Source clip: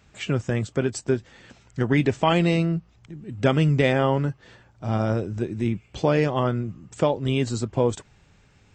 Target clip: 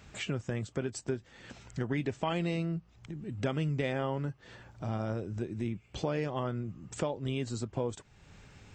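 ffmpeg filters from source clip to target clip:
-af "acompressor=threshold=-45dB:ratio=2,volume=3dB"

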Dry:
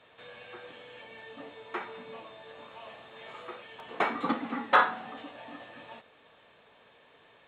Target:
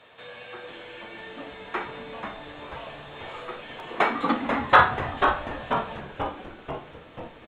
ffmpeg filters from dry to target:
-filter_complex "[0:a]bandreject=f=50:t=h:w=6,bandreject=f=100:t=h:w=6,bandreject=f=150:t=h:w=6,bandreject=f=200:t=h:w=6,bandreject=f=250:t=h:w=6,bandreject=f=300:t=h:w=6,bandreject=f=350:t=h:w=6,bandreject=f=400:t=h:w=6,bandreject=f=450:t=h:w=6,asplit=9[a][b][c][d][e][f][g][h][i];[b]adelay=488,afreqshift=-150,volume=-6dB[j];[c]adelay=976,afreqshift=-300,volume=-10.4dB[k];[d]adelay=1464,afreqshift=-450,volume=-14.9dB[l];[e]adelay=1952,afreqshift=-600,volume=-19.3dB[m];[f]adelay=2440,afreqshift=-750,volume=-23.7dB[n];[g]adelay=2928,afreqshift=-900,volume=-28.2dB[o];[h]adelay=3416,afreqshift=-1050,volume=-32.6dB[p];[i]adelay=3904,afreqshift=-1200,volume=-37.1dB[q];[a][j][k][l][m][n][o][p][q]amix=inputs=9:normalize=0,volume=6dB"

